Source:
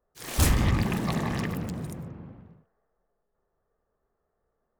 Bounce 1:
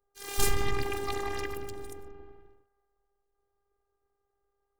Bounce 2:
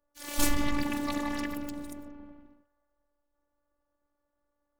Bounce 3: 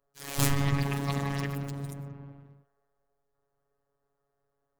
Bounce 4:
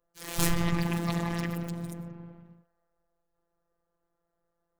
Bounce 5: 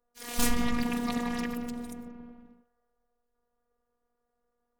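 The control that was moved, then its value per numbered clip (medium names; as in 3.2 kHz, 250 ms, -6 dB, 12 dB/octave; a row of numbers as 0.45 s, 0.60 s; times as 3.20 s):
robot voice, frequency: 400 Hz, 290 Hz, 140 Hz, 170 Hz, 240 Hz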